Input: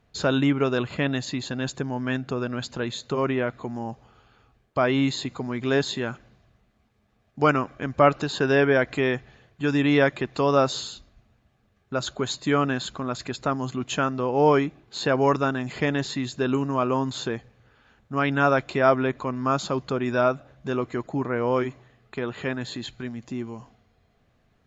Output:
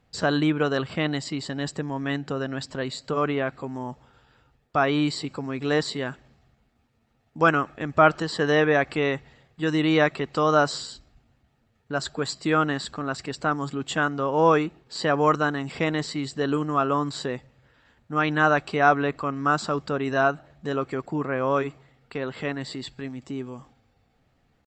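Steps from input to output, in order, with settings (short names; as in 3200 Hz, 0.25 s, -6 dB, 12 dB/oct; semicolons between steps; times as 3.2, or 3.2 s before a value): pitch shift +1.5 st; dynamic EQ 1200 Hz, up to +5 dB, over -37 dBFS, Q 2.7; gain -1 dB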